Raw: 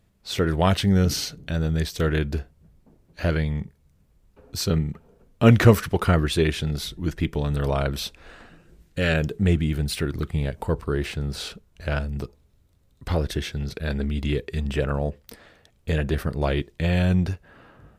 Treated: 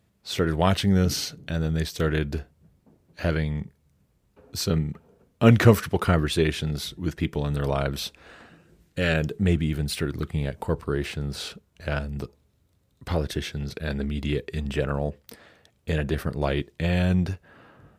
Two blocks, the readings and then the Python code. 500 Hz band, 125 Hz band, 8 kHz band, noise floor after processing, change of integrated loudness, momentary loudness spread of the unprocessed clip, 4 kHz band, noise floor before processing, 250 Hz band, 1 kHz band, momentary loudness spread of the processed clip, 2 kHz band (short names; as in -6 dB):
-1.0 dB, -2.0 dB, -1.0 dB, -67 dBFS, -1.5 dB, 12 LU, -1.0 dB, -62 dBFS, -1.0 dB, -1.0 dB, 13 LU, -1.0 dB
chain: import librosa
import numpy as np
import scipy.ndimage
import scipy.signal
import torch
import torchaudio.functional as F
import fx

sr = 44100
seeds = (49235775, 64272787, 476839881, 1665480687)

y = scipy.signal.sosfilt(scipy.signal.butter(2, 75.0, 'highpass', fs=sr, output='sos'), x)
y = F.gain(torch.from_numpy(y), -1.0).numpy()